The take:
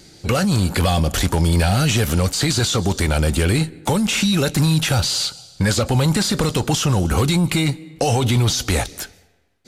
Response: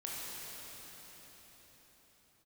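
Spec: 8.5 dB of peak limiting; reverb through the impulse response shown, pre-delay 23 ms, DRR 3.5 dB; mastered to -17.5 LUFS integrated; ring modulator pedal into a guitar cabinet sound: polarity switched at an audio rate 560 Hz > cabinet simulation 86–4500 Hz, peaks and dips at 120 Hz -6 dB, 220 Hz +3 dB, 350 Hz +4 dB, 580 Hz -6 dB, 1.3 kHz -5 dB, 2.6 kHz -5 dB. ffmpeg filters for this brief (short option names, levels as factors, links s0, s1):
-filter_complex "[0:a]alimiter=limit=0.141:level=0:latency=1,asplit=2[s0][s1];[1:a]atrim=start_sample=2205,adelay=23[s2];[s1][s2]afir=irnorm=-1:irlink=0,volume=0.531[s3];[s0][s3]amix=inputs=2:normalize=0,aeval=exprs='val(0)*sgn(sin(2*PI*560*n/s))':c=same,highpass=86,equalizer=f=120:t=q:w=4:g=-6,equalizer=f=220:t=q:w=4:g=3,equalizer=f=350:t=q:w=4:g=4,equalizer=f=580:t=q:w=4:g=-6,equalizer=f=1300:t=q:w=4:g=-5,equalizer=f=2600:t=q:w=4:g=-5,lowpass=f=4500:w=0.5412,lowpass=f=4500:w=1.3066,volume=2.11"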